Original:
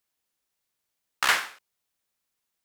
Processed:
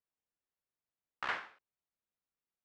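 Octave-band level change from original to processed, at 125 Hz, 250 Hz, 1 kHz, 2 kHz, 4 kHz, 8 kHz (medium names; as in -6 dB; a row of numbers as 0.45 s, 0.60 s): no reading, -9.0 dB, -12.0 dB, -14.0 dB, -19.5 dB, -31.5 dB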